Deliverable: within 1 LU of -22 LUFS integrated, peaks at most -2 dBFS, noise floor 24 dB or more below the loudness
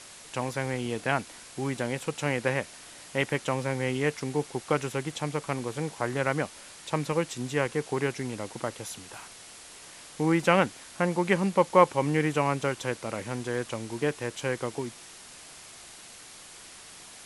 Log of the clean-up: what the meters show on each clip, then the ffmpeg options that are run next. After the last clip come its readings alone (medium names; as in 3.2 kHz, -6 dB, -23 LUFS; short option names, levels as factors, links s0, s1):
noise floor -48 dBFS; noise floor target -53 dBFS; loudness -29.0 LUFS; peak level -6.0 dBFS; loudness target -22.0 LUFS
-> -af "afftdn=nr=6:nf=-48"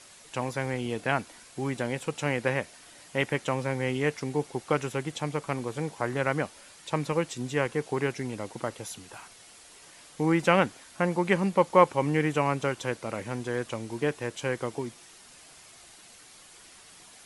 noise floor -52 dBFS; noise floor target -53 dBFS
-> -af "afftdn=nr=6:nf=-52"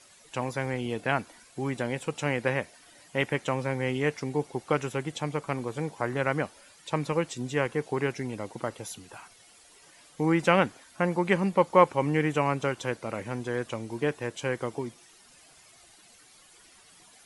noise floor -56 dBFS; loudness -29.0 LUFS; peak level -6.0 dBFS; loudness target -22.0 LUFS
-> -af "volume=2.24,alimiter=limit=0.794:level=0:latency=1"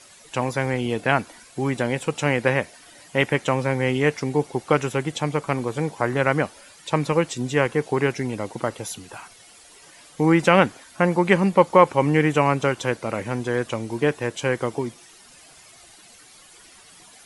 loudness -22.5 LUFS; peak level -2.0 dBFS; noise floor -49 dBFS